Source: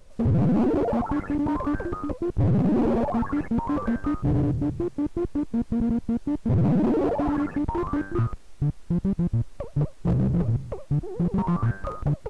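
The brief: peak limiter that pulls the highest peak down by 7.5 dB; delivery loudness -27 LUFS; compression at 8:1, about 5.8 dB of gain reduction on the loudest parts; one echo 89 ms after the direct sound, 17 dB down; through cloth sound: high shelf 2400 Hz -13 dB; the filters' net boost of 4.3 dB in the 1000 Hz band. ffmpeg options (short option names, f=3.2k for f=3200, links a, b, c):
-af "equalizer=f=1k:t=o:g=7.5,acompressor=threshold=-23dB:ratio=8,alimiter=limit=-22dB:level=0:latency=1,highshelf=f=2.4k:g=-13,aecho=1:1:89:0.141,volume=4dB"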